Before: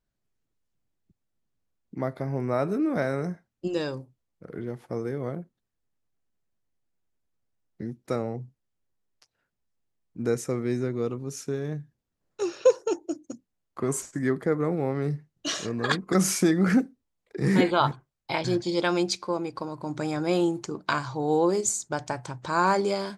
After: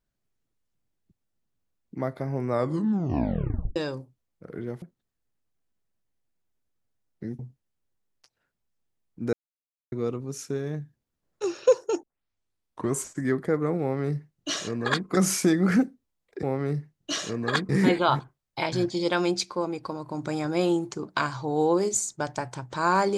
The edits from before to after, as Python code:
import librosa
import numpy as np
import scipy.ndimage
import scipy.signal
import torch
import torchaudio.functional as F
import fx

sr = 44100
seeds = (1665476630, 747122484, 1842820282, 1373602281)

y = fx.edit(x, sr, fx.tape_stop(start_s=2.5, length_s=1.26),
    fx.cut(start_s=4.82, length_s=0.58),
    fx.cut(start_s=7.97, length_s=0.4),
    fx.silence(start_s=10.31, length_s=0.59),
    fx.tape_start(start_s=13.01, length_s=0.9),
    fx.duplicate(start_s=14.79, length_s=1.26, to_s=17.41), tone=tone)